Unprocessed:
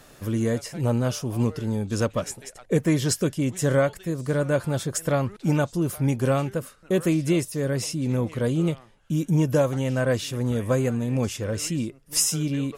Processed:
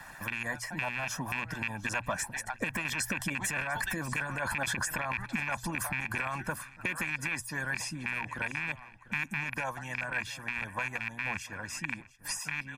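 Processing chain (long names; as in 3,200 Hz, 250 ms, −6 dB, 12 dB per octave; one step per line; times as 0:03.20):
loose part that buzzes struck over −25 dBFS, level −15 dBFS
source passing by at 0:04.13, 12 m/s, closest 6.8 metres
flat-topped bell 1,400 Hz +12.5 dB
mains-hum notches 60/120 Hz
comb filter 1.2 ms, depth 80%
in parallel at −1.5 dB: compressor whose output falls as the input rises −30 dBFS
on the sum: brickwall limiter −21.5 dBFS, peak gain reduction 17 dB
single-tap delay 696 ms −20.5 dB
harmonic and percussive parts rebalanced harmonic −13 dB
multiband upward and downward compressor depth 40%
level +2 dB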